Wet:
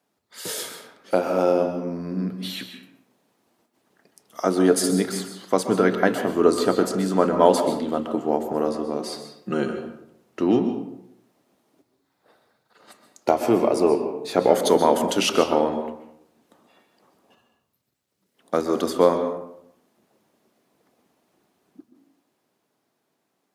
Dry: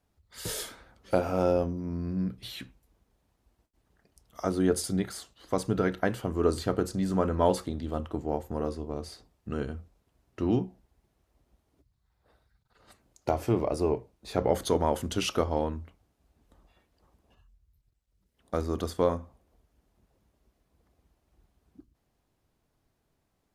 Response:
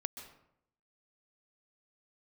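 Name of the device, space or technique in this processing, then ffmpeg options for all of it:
far laptop microphone: -filter_complex "[0:a]highpass=180,asettb=1/sr,asplit=3[s0][s1][s2];[s0]atrim=end=8.994[s3];[s1]atrim=start=8.99:end=9.68,asetpts=PTS-STARTPTS,afade=t=in:d=0.004:c=qsin,afade=t=out:st=0.686:d=0.004:c=qsin,aecho=1:1:5.6:0.89,atrim=end_sample=30429[s4];[s2]atrim=start=9.676[s5];[s3][s4]acrossfade=d=0.004:c1=hsin:c2=qsin[s6];[s6][s5]acrossfade=d=0.004:c1=qsin:c2=hsin[s7];[1:a]atrim=start_sample=2205[s8];[s7][s8]afir=irnorm=-1:irlink=0,highpass=160,dynaudnorm=f=300:g=13:m=1.58,volume=2"

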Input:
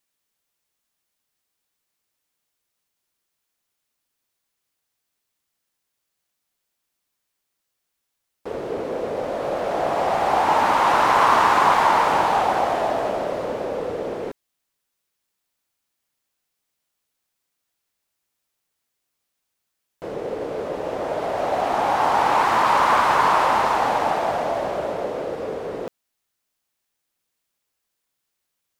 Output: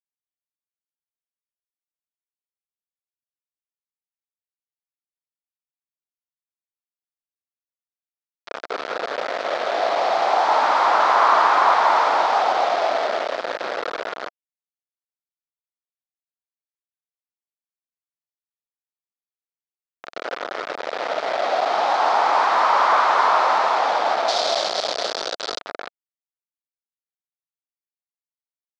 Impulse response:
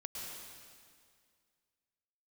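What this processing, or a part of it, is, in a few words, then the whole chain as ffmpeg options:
hand-held game console: -filter_complex "[0:a]acrusher=bits=3:mix=0:aa=0.000001,highpass=430,equalizer=f=680:t=q:w=4:g=5,equalizer=f=1300:t=q:w=4:g=5,equalizer=f=2800:t=q:w=4:g=-4,lowpass=f=4700:w=0.5412,lowpass=f=4700:w=1.3066,asettb=1/sr,asplit=3[s0][s1][s2];[s0]atrim=end=24.284[s3];[s1]atrim=start=24.28:end=25.59,asetpts=PTS-STARTPTS,afade=t=in:d=0.004:c=qsin,afade=t=out:st=1.306:d=0.004:c=qsin,highshelf=f=3100:t=q:w=1.5:g=12[s4];[s2]atrim=start=25.586[s5];[s3][s4]acrossfade=d=0.004:c1=hsin:c2=qsin[s6];[s6][s5]acrossfade=d=0.004:c1=qsin:c2=hsin,volume=0.841"

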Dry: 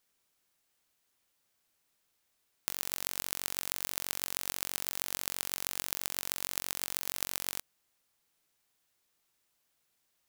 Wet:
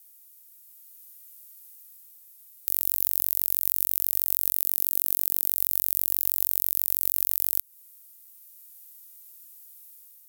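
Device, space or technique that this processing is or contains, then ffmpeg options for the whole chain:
FM broadcast chain: -filter_complex "[0:a]highpass=58,dynaudnorm=f=550:g=3:m=1.68,acrossover=split=520|7900[s0][s1][s2];[s0]acompressor=threshold=0.00126:ratio=4[s3];[s1]acompressor=threshold=0.00562:ratio=4[s4];[s2]acompressor=threshold=0.00891:ratio=4[s5];[s3][s4][s5]amix=inputs=3:normalize=0,aemphasis=mode=production:type=50fm,alimiter=limit=0.596:level=0:latency=1:release=62,asoftclip=type=hard:threshold=0.376,lowpass=f=15000:w=0.5412,lowpass=f=15000:w=1.3066,aemphasis=mode=production:type=50fm,asettb=1/sr,asplit=3[s6][s7][s8];[s6]atrim=end=4.554[s9];[s7]atrim=start=4.55:end=5.52,asetpts=PTS-STARTPTS,afade=t=in:d=0.004:c=qsin,afade=t=out:st=0.966:d=0.004:c=qsin,highpass=230[s10];[s8]atrim=start=5.516[s11];[s9][s10]acrossfade=d=0.004:c1=hsin:c2=qsin[s12];[s12][s11]acrossfade=d=0.004:c1=qsin:c2=hsin,volume=0.891"

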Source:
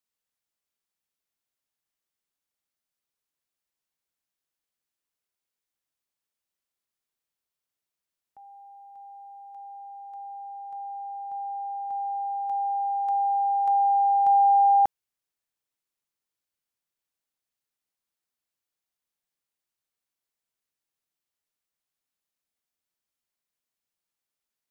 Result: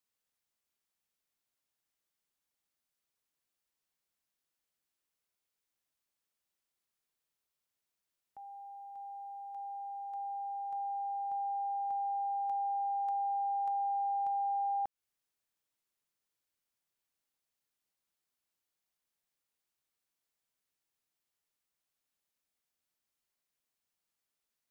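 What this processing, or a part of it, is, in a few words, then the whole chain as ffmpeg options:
serial compression, leveller first: -af "acompressor=threshold=0.0794:ratio=6,acompressor=threshold=0.02:ratio=4"

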